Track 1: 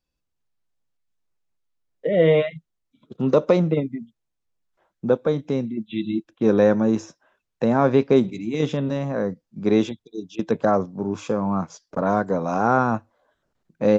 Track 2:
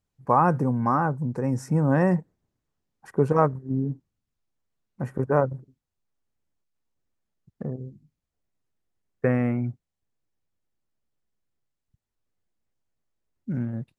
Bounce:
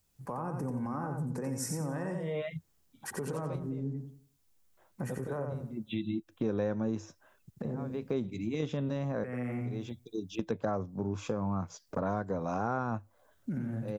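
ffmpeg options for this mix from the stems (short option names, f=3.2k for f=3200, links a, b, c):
-filter_complex "[0:a]equalizer=f=93:w=2.5:g=12,volume=-1.5dB[a];[1:a]acrossover=split=210|600[b][c][d];[b]acompressor=threshold=-30dB:ratio=4[e];[c]acompressor=threshold=-25dB:ratio=4[f];[d]acompressor=threshold=-30dB:ratio=4[g];[e][f][g]amix=inputs=3:normalize=0,alimiter=level_in=3.5dB:limit=-24dB:level=0:latency=1:release=130,volume=-3.5dB,crystalizer=i=2.5:c=0,volume=2.5dB,asplit=3[h][i][j];[i]volume=-5dB[k];[j]apad=whole_len=616761[l];[a][l]sidechaincompress=threshold=-54dB:ratio=8:attack=8.9:release=227[m];[k]aecho=0:1:89|178|267|356|445:1|0.32|0.102|0.0328|0.0105[n];[m][h][n]amix=inputs=3:normalize=0,acompressor=threshold=-33dB:ratio=3"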